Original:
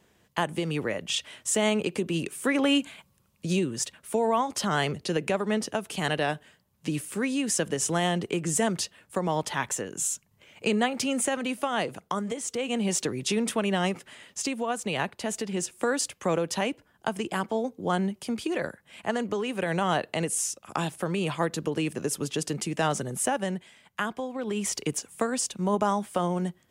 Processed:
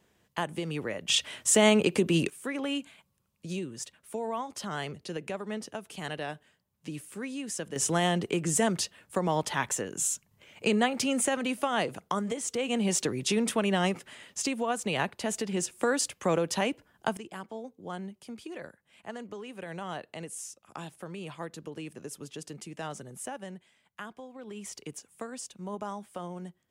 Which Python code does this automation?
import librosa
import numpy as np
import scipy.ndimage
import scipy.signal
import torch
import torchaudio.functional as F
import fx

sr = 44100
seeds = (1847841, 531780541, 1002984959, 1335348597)

y = fx.gain(x, sr, db=fx.steps((0.0, -4.5), (1.08, 3.5), (2.3, -9.0), (7.76, -0.5), (17.17, -12.0)))